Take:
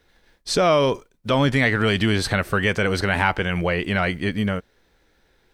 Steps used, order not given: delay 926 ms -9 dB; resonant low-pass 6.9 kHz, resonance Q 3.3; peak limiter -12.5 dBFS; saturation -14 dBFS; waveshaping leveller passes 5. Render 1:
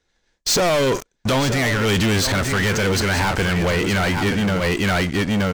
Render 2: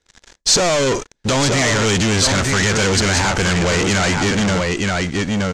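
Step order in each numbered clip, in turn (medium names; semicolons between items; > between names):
resonant low-pass > waveshaping leveller > delay > peak limiter > saturation; peak limiter > delay > saturation > waveshaping leveller > resonant low-pass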